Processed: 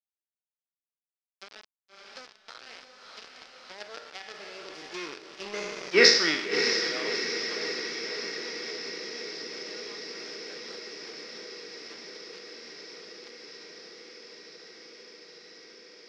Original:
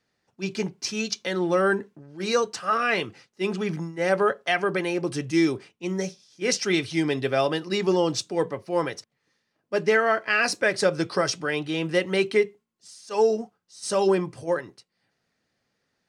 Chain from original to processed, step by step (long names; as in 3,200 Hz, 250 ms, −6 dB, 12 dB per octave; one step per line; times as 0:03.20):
peak hold with a decay on every bin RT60 1.12 s
source passing by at 0:05.91, 26 m/s, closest 2.2 metres
elliptic high-pass filter 150 Hz, stop band 50 dB
bit-depth reduction 8 bits, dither none
dead-zone distortion −44 dBFS
on a send: feedback delay with all-pass diffusion 635 ms, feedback 67%, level −7 dB
on the sum: dynamic equaliser 1,600 Hz, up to +5 dB, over −56 dBFS, Q 1
upward compression, threshold −39 dBFS
low-pass with resonance 5,100 Hz, resonance Q 4.4
bass and treble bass −12 dB, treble −9 dB
level +8 dB